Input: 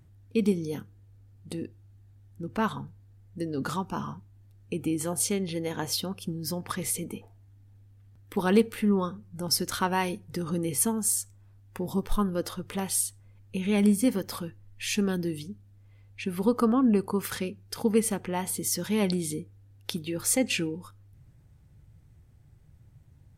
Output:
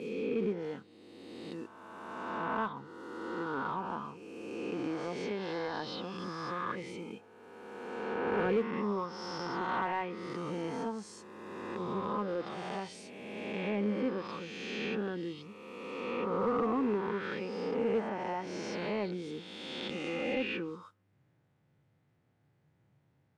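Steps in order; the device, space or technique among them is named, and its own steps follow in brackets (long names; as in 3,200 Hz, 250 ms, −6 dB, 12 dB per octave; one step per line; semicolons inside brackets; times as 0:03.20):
peak hold with a rise ahead of every peak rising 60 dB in 2.15 s
carbon microphone (band-pass filter 400–3,100 Hz; soft clipping −17.5 dBFS, distortion −19 dB; noise that follows the level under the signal 19 dB)
treble cut that deepens with the level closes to 2,500 Hz, closed at −26 dBFS
low-pass filter 10,000 Hz 12 dB per octave
parametric band 130 Hz +9.5 dB 1.9 octaves
level −6.5 dB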